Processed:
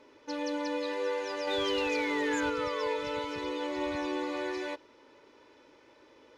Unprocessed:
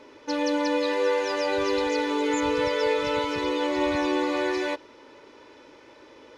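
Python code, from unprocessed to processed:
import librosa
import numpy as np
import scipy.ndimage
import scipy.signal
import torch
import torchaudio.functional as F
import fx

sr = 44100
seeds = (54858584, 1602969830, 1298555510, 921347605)

y = fx.spec_paint(x, sr, seeds[0], shape='fall', start_s=1.5, length_s=1.47, low_hz=920.0, high_hz=3700.0, level_db=-32.0)
y = fx.leveller(y, sr, passes=1, at=(1.47, 2.5))
y = F.gain(torch.from_numpy(y), -8.5).numpy()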